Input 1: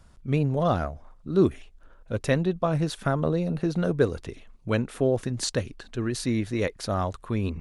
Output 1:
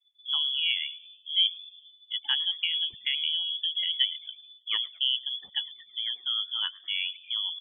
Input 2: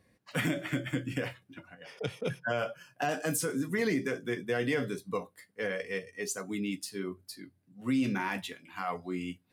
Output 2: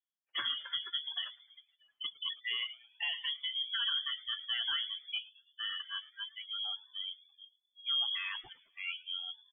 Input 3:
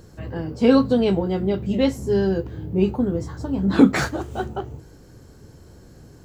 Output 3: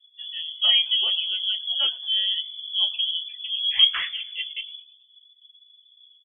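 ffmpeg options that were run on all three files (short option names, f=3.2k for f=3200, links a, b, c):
-filter_complex "[0:a]afftdn=nr=31:nf=-34,asplit=5[a][b][c][d][e];[b]adelay=108,afreqshift=-140,volume=-21dB[f];[c]adelay=216,afreqshift=-280,volume=-26.4dB[g];[d]adelay=324,afreqshift=-420,volume=-31.7dB[h];[e]adelay=432,afreqshift=-560,volume=-37.1dB[i];[a][f][g][h][i]amix=inputs=5:normalize=0,lowpass=f=3k:t=q:w=0.5098,lowpass=f=3k:t=q:w=0.6013,lowpass=f=3k:t=q:w=0.9,lowpass=f=3k:t=q:w=2.563,afreqshift=-3500,volume=-4.5dB"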